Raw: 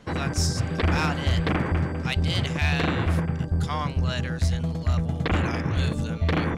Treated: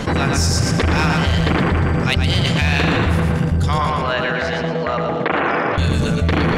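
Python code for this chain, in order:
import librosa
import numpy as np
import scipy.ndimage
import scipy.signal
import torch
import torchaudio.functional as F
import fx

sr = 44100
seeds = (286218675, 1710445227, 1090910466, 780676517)

y = fx.bandpass_edges(x, sr, low_hz=420.0, high_hz=2100.0, at=(3.78, 5.78))
y = fx.echo_feedback(y, sr, ms=117, feedback_pct=46, wet_db=-5)
y = fx.env_flatten(y, sr, amount_pct=70)
y = y * librosa.db_to_amplitude(4.0)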